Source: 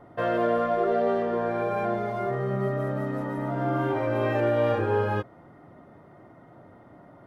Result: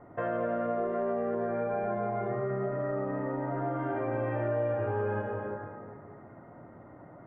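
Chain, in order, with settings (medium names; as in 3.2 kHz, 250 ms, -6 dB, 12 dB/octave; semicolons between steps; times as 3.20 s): on a send at -2 dB: reverberation RT60 2.0 s, pre-delay 53 ms; on the sum: compression 3:1, threshold -28 dBFS, peak gain reduction 10 dB; low-pass 2.2 kHz 24 dB/octave; trim -2 dB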